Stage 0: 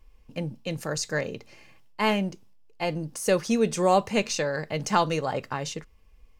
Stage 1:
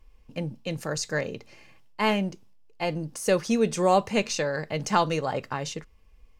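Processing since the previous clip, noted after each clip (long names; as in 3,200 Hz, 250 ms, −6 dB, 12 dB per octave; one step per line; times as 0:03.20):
high-shelf EQ 11,000 Hz −4 dB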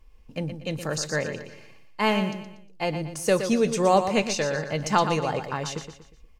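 repeating echo 119 ms, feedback 39%, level −9 dB
level +1 dB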